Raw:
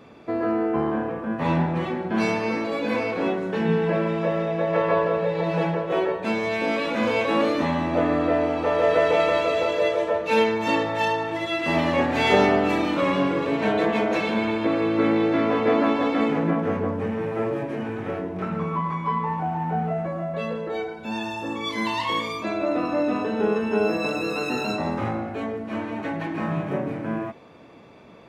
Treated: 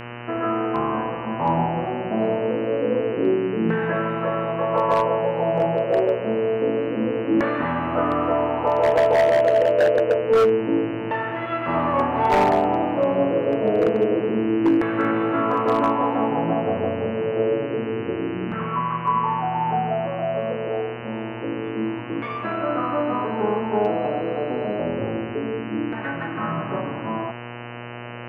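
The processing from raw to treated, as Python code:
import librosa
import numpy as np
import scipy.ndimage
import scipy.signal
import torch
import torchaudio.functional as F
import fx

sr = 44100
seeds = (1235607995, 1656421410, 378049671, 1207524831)

y = fx.filter_lfo_lowpass(x, sr, shape='saw_down', hz=0.27, low_hz=320.0, high_hz=1700.0, q=3.5)
y = 10.0 ** (-8.5 / 20.0) * (np.abs((y / 10.0 ** (-8.5 / 20.0) + 3.0) % 4.0 - 2.0) - 1.0)
y = fx.dmg_buzz(y, sr, base_hz=120.0, harmonics=25, level_db=-33.0, tilt_db=-3, odd_only=False)
y = F.gain(torch.from_numpy(y), -2.5).numpy()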